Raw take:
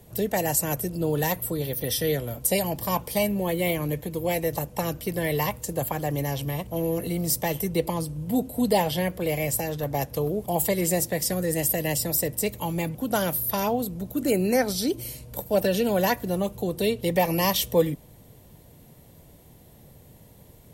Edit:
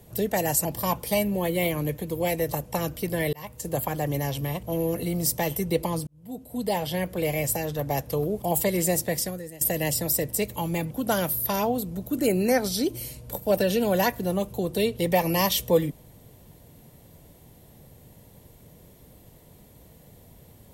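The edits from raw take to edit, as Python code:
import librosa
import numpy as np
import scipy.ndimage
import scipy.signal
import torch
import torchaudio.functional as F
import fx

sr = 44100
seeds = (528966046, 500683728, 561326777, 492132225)

y = fx.edit(x, sr, fx.cut(start_s=0.65, length_s=2.04),
    fx.fade_in_span(start_s=5.37, length_s=0.4),
    fx.fade_in_span(start_s=8.11, length_s=1.14),
    fx.fade_out_to(start_s=11.21, length_s=0.44, curve='qua', floor_db=-18.0), tone=tone)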